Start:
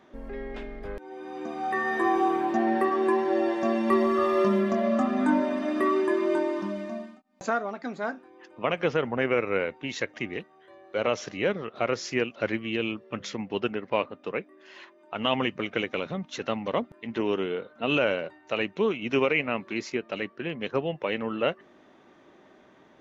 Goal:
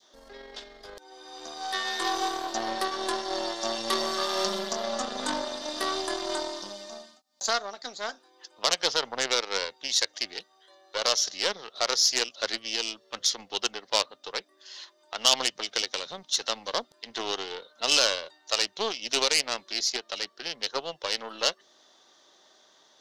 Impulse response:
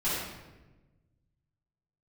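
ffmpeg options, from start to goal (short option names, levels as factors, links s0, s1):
-filter_complex "[0:a]adynamicequalizer=threshold=0.01:dfrequency=1200:dqfactor=0.78:tfrequency=1200:tqfactor=0.78:attack=5:release=100:ratio=0.375:range=2:mode=cutabove:tftype=bell,aeval=exprs='0.282*(cos(1*acos(clip(val(0)/0.282,-1,1)))-cos(1*PI/2))+0.0316*(cos(4*acos(clip(val(0)/0.282,-1,1)))-cos(4*PI/2))+0.0562*(cos(6*acos(clip(val(0)/0.282,-1,1)))-cos(6*PI/2))+0.0141*(cos(7*acos(clip(val(0)/0.282,-1,1)))-cos(7*PI/2))+0.00794*(cos(8*acos(clip(val(0)/0.282,-1,1)))-cos(8*PI/2))':c=same,acrossover=split=480 5300:gain=0.158 1 0.126[s0][s1][s2];[s0][s1][s2]amix=inputs=3:normalize=0,aexciter=amount=10.2:drive=9.1:freq=3800"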